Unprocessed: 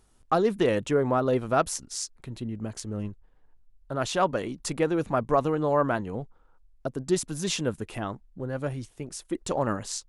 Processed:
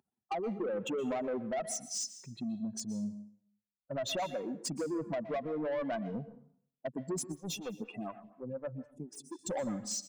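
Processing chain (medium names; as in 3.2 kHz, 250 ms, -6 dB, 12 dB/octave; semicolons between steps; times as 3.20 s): spectral contrast enhancement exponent 2.4; high-pass 180 Hz 24 dB/octave; comb 1.2 ms, depth 44%; compression 8:1, threshold -27 dBFS, peak gain reduction 10 dB; saturation -30.5 dBFS, distortion -12 dB; plate-style reverb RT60 0.59 s, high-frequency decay 0.9×, pre-delay 110 ms, DRR 12.5 dB; 7.32–9.39 s: lamp-driven phase shifter 4.1 Hz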